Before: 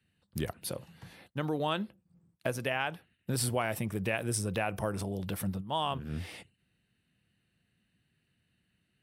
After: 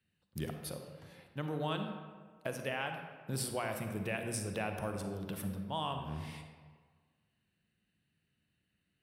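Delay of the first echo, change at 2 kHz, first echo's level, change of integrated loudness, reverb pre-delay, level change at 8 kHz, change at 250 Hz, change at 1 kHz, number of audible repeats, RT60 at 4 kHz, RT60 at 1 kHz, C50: no echo audible, −5.0 dB, no echo audible, −5.0 dB, 37 ms, −5.5 dB, −4.0 dB, −4.5 dB, no echo audible, 0.90 s, 1.6 s, 5.5 dB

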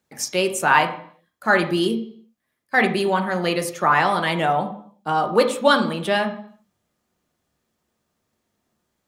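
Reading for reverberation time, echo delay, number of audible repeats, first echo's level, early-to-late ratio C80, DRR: 0.55 s, no echo audible, no echo audible, no echo audible, 12.5 dB, 3.5 dB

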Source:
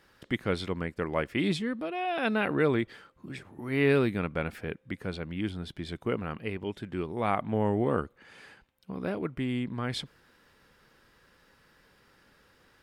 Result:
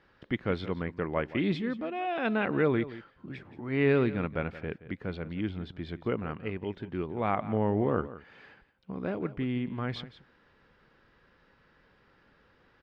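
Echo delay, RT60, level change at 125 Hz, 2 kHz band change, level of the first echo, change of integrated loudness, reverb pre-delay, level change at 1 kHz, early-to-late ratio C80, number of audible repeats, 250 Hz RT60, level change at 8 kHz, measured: 174 ms, no reverb audible, 0.0 dB, −2.0 dB, −15.5 dB, −0.5 dB, no reverb audible, −1.0 dB, no reverb audible, 1, no reverb audible, can't be measured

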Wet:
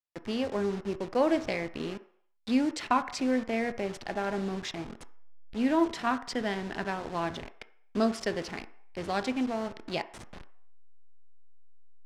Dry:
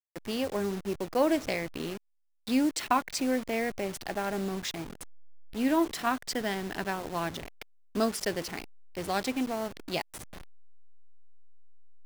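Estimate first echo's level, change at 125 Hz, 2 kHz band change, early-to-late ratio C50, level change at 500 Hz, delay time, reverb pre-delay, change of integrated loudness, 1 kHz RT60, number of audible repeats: no echo audible, 0.0 dB, −0.5 dB, 15.5 dB, +0.5 dB, no echo audible, 3 ms, 0.0 dB, 0.65 s, no echo audible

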